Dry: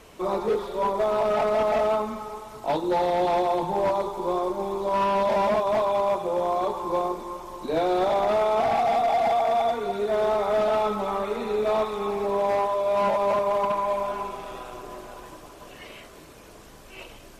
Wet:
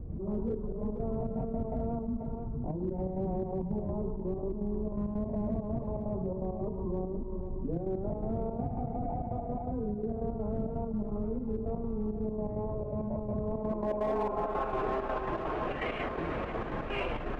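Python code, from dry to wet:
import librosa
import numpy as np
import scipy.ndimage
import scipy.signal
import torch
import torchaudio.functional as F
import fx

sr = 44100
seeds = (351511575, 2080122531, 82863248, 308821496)

p1 = scipy.signal.medfilt(x, 9)
p2 = fx.wow_flutter(p1, sr, seeds[0], rate_hz=2.1, depth_cents=21.0)
p3 = fx.step_gate(p2, sr, bpm=166, pattern='.x.xxx.x', floor_db=-12.0, edge_ms=4.5)
p4 = fx.filter_sweep_lowpass(p3, sr, from_hz=140.0, to_hz=2100.0, start_s=13.42, end_s=14.81, q=0.86)
p5 = np.clip(10.0 ** (35.5 / 20.0) * p4, -1.0, 1.0) / 10.0 ** (35.5 / 20.0)
p6 = p4 + (p5 * librosa.db_to_amplitude(-5.0))
p7 = fx.pitch_keep_formants(p6, sr, semitones=1.0)
p8 = p7 + 10.0 ** (-17.5 / 20.0) * np.pad(p7, (int(486 * sr / 1000.0), 0))[:len(p7)]
y = fx.env_flatten(p8, sr, amount_pct=70)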